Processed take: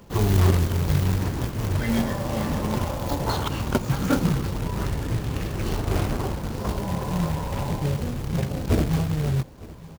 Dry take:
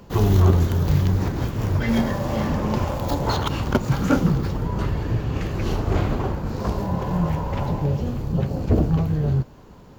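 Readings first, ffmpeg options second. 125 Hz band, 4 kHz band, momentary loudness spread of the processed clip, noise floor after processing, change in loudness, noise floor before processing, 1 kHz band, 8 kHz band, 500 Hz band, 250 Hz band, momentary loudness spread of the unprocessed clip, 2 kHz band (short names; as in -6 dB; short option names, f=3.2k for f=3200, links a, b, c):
-3.0 dB, +0.5 dB, 6 LU, -41 dBFS, -2.5 dB, -45 dBFS, -2.5 dB, +4.5 dB, -3.0 dB, -3.0 dB, 6 LU, -1.0 dB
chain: -af "acrusher=bits=3:mode=log:mix=0:aa=0.000001,aecho=1:1:908:0.0944,volume=-3dB"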